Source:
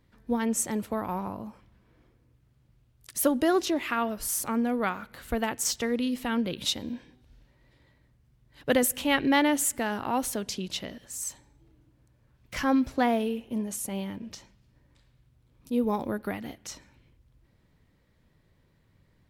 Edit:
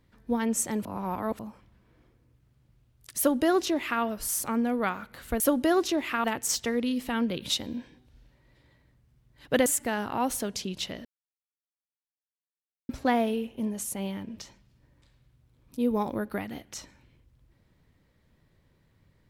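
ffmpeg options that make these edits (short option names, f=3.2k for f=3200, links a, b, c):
-filter_complex "[0:a]asplit=8[a][b][c][d][e][f][g][h];[a]atrim=end=0.852[i];[b]atrim=start=0.848:end=1.392,asetpts=PTS-STARTPTS,areverse[j];[c]atrim=start=1.388:end=5.402[k];[d]atrim=start=3.178:end=4.022[l];[e]atrim=start=5.398:end=8.822[m];[f]atrim=start=9.588:end=10.98,asetpts=PTS-STARTPTS,afade=t=out:st=1.388:d=0.004:c=hsin[n];[g]atrim=start=10.98:end=12.82,asetpts=PTS-STARTPTS,volume=0[o];[h]atrim=start=12.82,asetpts=PTS-STARTPTS,afade=t=in:d=0.004:c=hsin[p];[i][j]acrossfade=d=0.004:c1=hsin:c2=hsin[q];[q][k]acrossfade=d=0.004:c1=hsin:c2=hsin[r];[r][l]acrossfade=d=0.004:c1=hsin:c2=hsin[s];[s][m]acrossfade=d=0.004:c1=hsin:c2=hsin[t];[n][o][p]concat=n=3:v=0:a=1[u];[t][u]acrossfade=d=0.004:c1=hsin:c2=hsin"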